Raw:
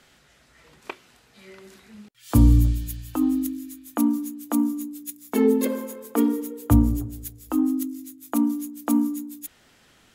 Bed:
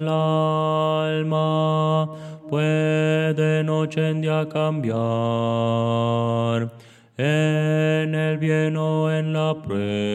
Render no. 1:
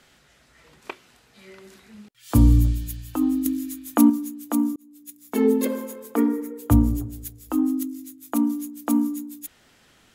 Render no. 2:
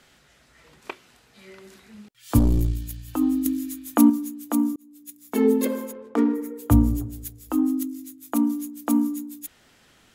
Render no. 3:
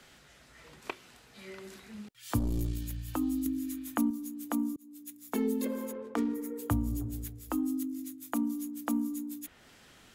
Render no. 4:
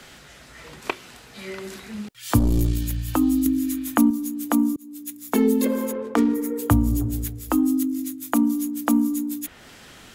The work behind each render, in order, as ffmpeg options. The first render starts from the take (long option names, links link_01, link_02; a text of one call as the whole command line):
ffmpeg -i in.wav -filter_complex "[0:a]asettb=1/sr,asplit=3[link_01][link_02][link_03];[link_01]atrim=end=6.174[link_04];[link_02]atrim=start=6.17:end=6.59,asetpts=PTS-STARTPTS,afade=type=in:duration=0.004:curve=qsin,afade=type=out:start_time=0.416:duration=0.004:curve=qsin,highshelf=frequency=2500:width_type=q:width=3:gain=-6[link_05];[link_03]atrim=start=6.586[link_06];[link_04][link_05]acrossfade=duration=0.004:curve1=hsin:curve2=qsin[link_07];[link_07][link_06]acrossfade=duration=0.004:curve1=qsin:curve2=hsin,asplit=4[link_08][link_09][link_10][link_11];[link_08]atrim=end=3.462[link_12];[link_09]atrim=start=3.458:end=4.102,asetpts=PTS-STARTPTS,volume=6dB[link_13];[link_10]atrim=start=4.098:end=4.76,asetpts=PTS-STARTPTS,afade=type=out:start_time=0.658:duration=0.004:curve=hsin[link_14];[link_11]atrim=start=4.76,asetpts=PTS-STARTPTS,afade=type=in:duration=0.71[link_15];[link_12][link_13]acrossfade=duration=0.004:curve1=hsin:curve2=hsin[link_16];[link_14][link_15]concat=n=2:v=0:a=1[link_17];[link_16][link_17]acrossfade=duration=0.004:curve1=hsin:curve2=hsin" out.wav
ffmpeg -i in.wav -filter_complex "[0:a]asettb=1/sr,asplit=3[link_01][link_02][link_03];[link_01]atrim=end=2.394[link_04];[link_02]atrim=start=2.39:end=3.08,asetpts=PTS-STARTPTS,afade=type=in:duration=0.004:curve=qsin,afade=type=out:start_time=0.686:duration=0.004:curve=qsin,aeval=exprs='(tanh(5.62*val(0)+0.55)-tanh(0.55))/5.62':channel_layout=same[link_05];[link_03]atrim=start=3.076[link_06];[link_04][link_05]acrossfade=duration=0.004:curve1=hsin:curve2=qsin[link_07];[link_07][link_06]acrossfade=duration=0.004:curve1=qsin:curve2=hsin,asplit=3[link_08][link_09][link_10];[link_08]afade=type=out:start_time=5.91:duration=0.02[link_11];[link_09]adynamicsmooth=sensitivity=7.5:basefreq=1400,afade=type=in:start_time=5.91:duration=0.02,afade=type=out:start_time=6.34:duration=0.02[link_12];[link_10]afade=type=in:start_time=6.34:duration=0.02[link_13];[link_11][link_12][link_13]amix=inputs=3:normalize=0" out.wav
ffmpeg -i in.wav -filter_complex "[0:a]acrossover=split=160|3000[link_01][link_02][link_03];[link_01]acompressor=threshold=-32dB:ratio=4[link_04];[link_02]acompressor=threshold=-34dB:ratio=4[link_05];[link_03]acompressor=threshold=-44dB:ratio=4[link_06];[link_04][link_05][link_06]amix=inputs=3:normalize=0" out.wav
ffmpeg -i in.wav -af "volume=11.5dB" out.wav